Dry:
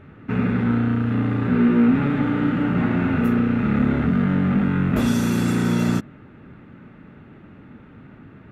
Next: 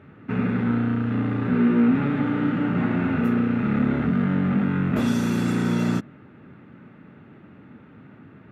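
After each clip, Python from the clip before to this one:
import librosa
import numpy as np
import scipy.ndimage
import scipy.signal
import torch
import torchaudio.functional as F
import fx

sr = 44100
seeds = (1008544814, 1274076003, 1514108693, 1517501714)

y = scipy.signal.sosfilt(scipy.signal.butter(2, 100.0, 'highpass', fs=sr, output='sos'), x)
y = fx.high_shelf(y, sr, hz=7500.0, db=-7.5)
y = F.gain(torch.from_numpy(y), -2.0).numpy()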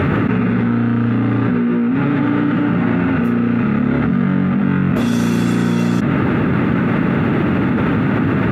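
y = fx.env_flatten(x, sr, amount_pct=100)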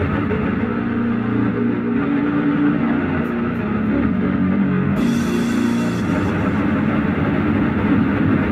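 y = fx.chorus_voices(x, sr, voices=6, hz=0.46, base_ms=12, depth_ms=2.4, mix_pct=50)
y = fx.echo_feedback(y, sr, ms=299, feedback_pct=42, wet_db=-5.5)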